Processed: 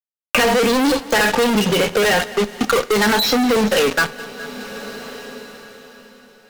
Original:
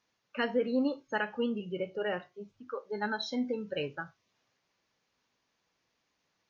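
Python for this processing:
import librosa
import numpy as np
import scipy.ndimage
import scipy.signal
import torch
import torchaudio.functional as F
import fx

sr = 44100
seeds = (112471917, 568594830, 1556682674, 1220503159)

y = scipy.signal.sosfilt(scipy.signal.butter(2, 230.0, 'highpass', fs=sr, output='sos'), x)
y = fx.high_shelf(y, sr, hz=3400.0, db=11.0)
y = fx.notch(y, sr, hz=1300.0, q=15.0)
y = y + 0.75 * np.pad(y, (int(4.3 * sr / 1000.0), 0))[:len(y)]
y = fx.fuzz(y, sr, gain_db=51.0, gate_db=-47.0)
y = fx.echo_feedback(y, sr, ms=208, feedback_pct=42, wet_db=-22.0)
y = fx.rev_double_slope(y, sr, seeds[0], early_s=0.31, late_s=4.5, knee_db=-19, drr_db=14.0)
y = fx.band_squash(y, sr, depth_pct=70)
y = y * 10.0 ** (-1.0 / 20.0)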